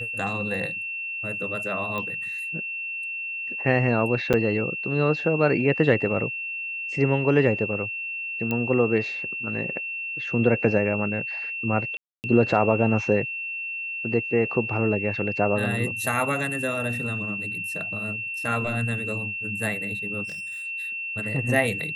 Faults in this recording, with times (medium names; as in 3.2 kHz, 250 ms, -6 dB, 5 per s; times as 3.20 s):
whine 2.7 kHz -29 dBFS
1.98 s: pop -18 dBFS
4.33–4.34 s: dropout 7.9 ms
8.51 s: pop -14 dBFS
11.97–12.24 s: dropout 269 ms
20.24–20.67 s: clipped -33 dBFS